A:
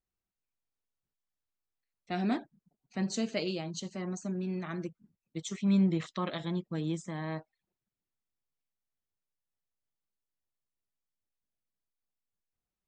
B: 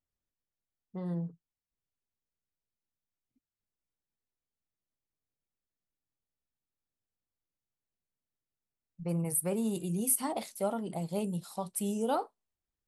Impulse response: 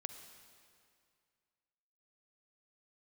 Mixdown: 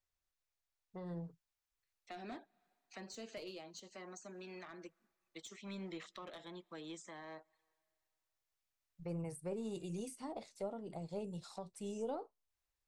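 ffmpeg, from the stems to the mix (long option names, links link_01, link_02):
-filter_complex "[0:a]highpass=750,dynaudnorm=framelen=970:gausssize=3:maxgain=4.5dB,asoftclip=type=tanh:threshold=-28dB,volume=-3dB,asplit=2[link_01][link_02];[link_02]volume=-23.5dB[link_03];[1:a]lowpass=frequency=7300:width=0.5412,lowpass=frequency=7300:width=1.3066,equalizer=frequency=210:width=0.87:gain=-13,bandreject=frequency=3100:width=13,volume=1dB[link_04];[2:a]atrim=start_sample=2205[link_05];[link_03][link_05]afir=irnorm=-1:irlink=0[link_06];[link_01][link_04][link_06]amix=inputs=3:normalize=0,acrossover=split=470[link_07][link_08];[link_08]acompressor=threshold=-52dB:ratio=6[link_09];[link_07][link_09]amix=inputs=2:normalize=0,aeval=exprs='0.1*(cos(1*acos(clip(val(0)/0.1,-1,1)))-cos(1*PI/2))+0.00631*(cos(4*acos(clip(val(0)/0.1,-1,1)))-cos(4*PI/2))':channel_layout=same"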